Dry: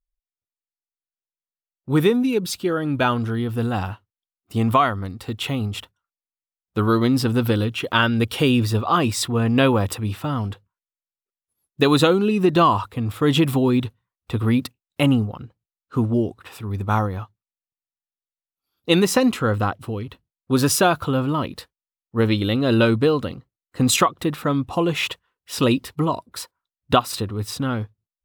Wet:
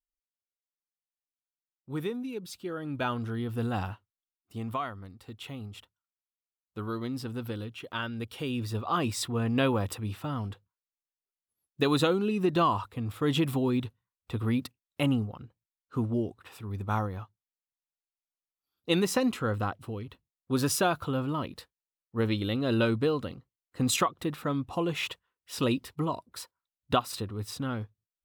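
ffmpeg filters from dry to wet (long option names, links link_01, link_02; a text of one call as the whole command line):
ffmpeg -i in.wav -af "afade=type=in:start_time=2.5:duration=1.31:silence=0.354813,afade=type=out:start_time=3.81:duration=0.8:silence=0.354813,afade=type=in:start_time=8.45:duration=0.58:silence=0.446684" out.wav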